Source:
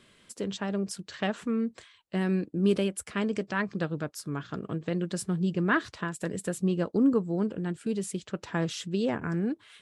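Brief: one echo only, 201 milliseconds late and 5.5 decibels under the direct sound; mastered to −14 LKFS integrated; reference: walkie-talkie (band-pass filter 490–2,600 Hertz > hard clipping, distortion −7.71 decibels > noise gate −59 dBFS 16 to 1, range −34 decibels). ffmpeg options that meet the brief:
ffmpeg -i in.wav -af "highpass=490,lowpass=2600,aecho=1:1:201:0.531,asoftclip=type=hard:threshold=-31.5dB,agate=range=-34dB:threshold=-59dB:ratio=16,volume=25dB" out.wav

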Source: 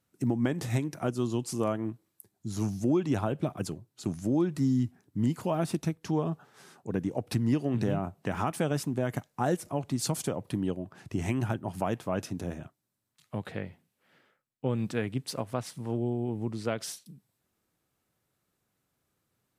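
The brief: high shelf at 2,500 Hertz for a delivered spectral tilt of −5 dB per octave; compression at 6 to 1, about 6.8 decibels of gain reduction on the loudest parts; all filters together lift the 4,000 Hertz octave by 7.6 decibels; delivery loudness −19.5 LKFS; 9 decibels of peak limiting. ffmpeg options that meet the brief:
ffmpeg -i in.wav -af "highshelf=frequency=2500:gain=4.5,equalizer=frequency=4000:width_type=o:gain=5.5,acompressor=threshold=-29dB:ratio=6,volume=17.5dB,alimiter=limit=-7.5dB:level=0:latency=1" out.wav

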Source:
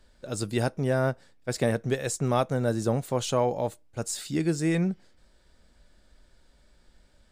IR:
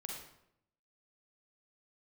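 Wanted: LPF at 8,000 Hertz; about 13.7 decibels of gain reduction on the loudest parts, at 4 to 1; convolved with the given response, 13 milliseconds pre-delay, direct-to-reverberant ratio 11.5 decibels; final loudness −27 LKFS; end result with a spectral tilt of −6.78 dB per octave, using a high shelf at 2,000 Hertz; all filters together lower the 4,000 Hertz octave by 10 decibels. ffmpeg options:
-filter_complex "[0:a]lowpass=8000,highshelf=frequency=2000:gain=-8,equalizer=frequency=4000:width_type=o:gain=-4.5,acompressor=threshold=-38dB:ratio=4,asplit=2[link_01][link_02];[1:a]atrim=start_sample=2205,adelay=13[link_03];[link_02][link_03]afir=irnorm=-1:irlink=0,volume=-9.5dB[link_04];[link_01][link_04]amix=inputs=2:normalize=0,volume=14dB"

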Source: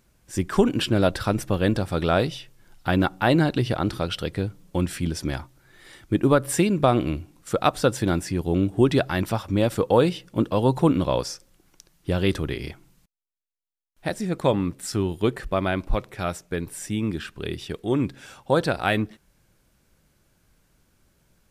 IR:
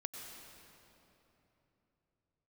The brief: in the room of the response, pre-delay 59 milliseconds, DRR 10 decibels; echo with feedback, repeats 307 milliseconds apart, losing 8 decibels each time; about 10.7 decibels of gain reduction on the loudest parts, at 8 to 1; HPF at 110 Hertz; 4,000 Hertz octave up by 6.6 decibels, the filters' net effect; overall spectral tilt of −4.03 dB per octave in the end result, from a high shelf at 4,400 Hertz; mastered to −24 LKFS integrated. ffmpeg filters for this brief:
-filter_complex "[0:a]highpass=110,equalizer=frequency=4000:width_type=o:gain=4,highshelf=frequency=4400:gain=8.5,acompressor=threshold=-24dB:ratio=8,aecho=1:1:307|614|921|1228|1535:0.398|0.159|0.0637|0.0255|0.0102,asplit=2[link_01][link_02];[1:a]atrim=start_sample=2205,adelay=59[link_03];[link_02][link_03]afir=irnorm=-1:irlink=0,volume=-8.5dB[link_04];[link_01][link_04]amix=inputs=2:normalize=0,volume=5.5dB"

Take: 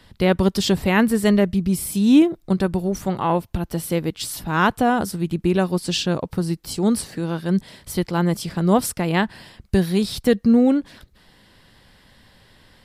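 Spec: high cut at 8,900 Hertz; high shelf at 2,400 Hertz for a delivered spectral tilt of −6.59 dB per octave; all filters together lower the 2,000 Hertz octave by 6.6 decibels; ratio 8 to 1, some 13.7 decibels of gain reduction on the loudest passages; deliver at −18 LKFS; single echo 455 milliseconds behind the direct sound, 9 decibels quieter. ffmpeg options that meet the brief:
ffmpeg -i in.wav -af "lowpass=8900,equalizer=frequency=2000:width_type=o:gain=-5.5,highshelf=frequency=2400:gain=-7.5,acompressor=threshold=-25dB:ratio=8,aecho=1:1:455:0.355,volume=12.5dB" out.wav

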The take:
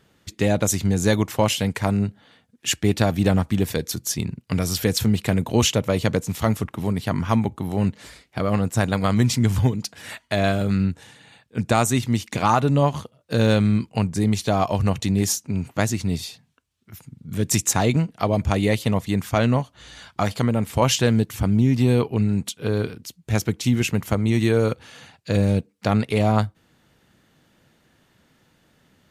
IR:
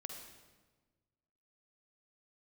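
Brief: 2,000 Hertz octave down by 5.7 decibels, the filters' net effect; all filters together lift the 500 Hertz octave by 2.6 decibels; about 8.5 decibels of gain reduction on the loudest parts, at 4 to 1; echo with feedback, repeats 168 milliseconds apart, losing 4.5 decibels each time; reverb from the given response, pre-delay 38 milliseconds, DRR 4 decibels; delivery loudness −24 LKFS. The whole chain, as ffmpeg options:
-filter_complex "[0:a]equalizer=frequency=500:width_type=o:gain=3.5,equalizer=frequency=2000:width_type=o:gain=-8,acompressor=threshold=-23dB:ratio=4,aecho=1:1:168|336|504|672|840|1008|1176|1344|1512:0.596|0.357|0.214|0.129|0.0772|0.0463|0.0278|0.0167|0.01,asplit=2[link_01][link_02];[1:a]atrim=start_sample=2205,adelay=38[link_03];[link_02][link_03]afir=irnorm=-1:irlink=0,volume=-1dB[link_04];[link_01][link_04]amix=inputs=2:normalize=0,volume=1dB"

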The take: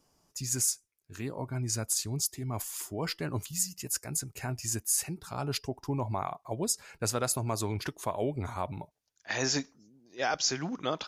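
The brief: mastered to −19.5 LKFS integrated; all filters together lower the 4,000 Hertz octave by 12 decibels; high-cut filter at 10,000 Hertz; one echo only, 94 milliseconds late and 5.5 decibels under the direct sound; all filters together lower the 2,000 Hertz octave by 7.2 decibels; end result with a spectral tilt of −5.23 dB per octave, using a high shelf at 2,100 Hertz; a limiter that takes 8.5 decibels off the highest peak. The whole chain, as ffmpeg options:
ffmpeg -i in.wav -af "lowpass=10000,equalizer=frequency=2000:width_type=o:gain=-3.5,highshelf=frequency=2100:gain=-9,equalizer=frequency=4000:width_type=o:gain=-5.5,alimiter=level_in=3dB:limit=-24dB:level=0:latency=1,volume=-3dB,aecho=1:1:94:0.531,volume=18dB" out.wav

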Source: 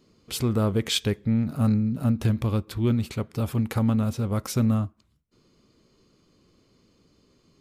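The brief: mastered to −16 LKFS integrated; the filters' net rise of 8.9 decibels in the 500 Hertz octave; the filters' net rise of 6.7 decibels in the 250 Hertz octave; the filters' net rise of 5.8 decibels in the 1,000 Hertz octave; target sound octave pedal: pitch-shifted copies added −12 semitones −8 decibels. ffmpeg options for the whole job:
ffmpeg -i in.wav -filter_complex "[0:a]equalizer=frequency=250:width_type=o:gain=6,equalizer=frequency=500:width_type=o:gain=8,equalizer=frequency=1000:width_type=o:gain=5,asplit=2[link_01][link_02];[link_02]asetrate=22050,aresample=44100,atempo=2,volume=-8dB[link_03];[link_01][link_03]amix=inputs=2:normalize=0,volume=4dB" out.wav

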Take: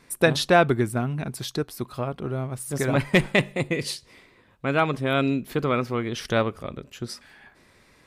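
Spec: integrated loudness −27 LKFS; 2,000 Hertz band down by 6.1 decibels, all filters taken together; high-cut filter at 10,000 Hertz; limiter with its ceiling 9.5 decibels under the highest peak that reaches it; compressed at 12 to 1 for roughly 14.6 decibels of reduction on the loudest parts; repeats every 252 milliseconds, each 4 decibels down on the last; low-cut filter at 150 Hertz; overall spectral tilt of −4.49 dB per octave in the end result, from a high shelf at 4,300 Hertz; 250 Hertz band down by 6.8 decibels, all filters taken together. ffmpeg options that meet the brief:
ffmpeg -i in.wav -af "highpass=150,lowpass=10000,equalizer=frequency=250:width_type=o:gain=-8.5,equalizer=frequency=2000:width_type=o:gain=-7,highshelf=frequency=4300:gain=-4.5,acompressor=threshold=-30dB:ratio=12,alimiter=level_in=4dB:limit=-24dB:level=0:latency=1,volume=-4dB,aecho=1:1:252|504|756|1008|1260|1512|1764|2016|2268:0.631|0.398|0.25|0.158|0.0994|0.0626|0.0394|0.0249|0.0157,volume=11dB" out.wav

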